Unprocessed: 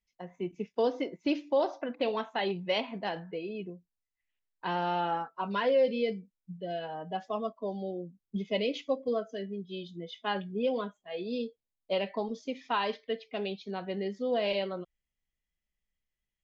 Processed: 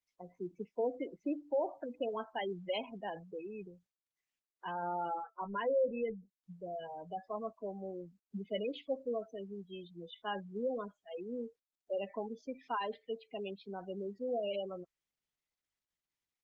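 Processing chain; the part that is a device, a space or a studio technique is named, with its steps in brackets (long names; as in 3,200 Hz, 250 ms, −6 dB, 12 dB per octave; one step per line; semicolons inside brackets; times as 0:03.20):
0:03.67–0:04.83: dynamic equaliser 290 Hz, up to −6 dB, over −49 dBFS, Q 1.1
noise-suppressed video call (high-pass filter 160 Hz 6 dB per octave; gate on every frequency bin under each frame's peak −15 dB strong; level −5.5 dB; Opus 20 kbit/s 48,000 Hz)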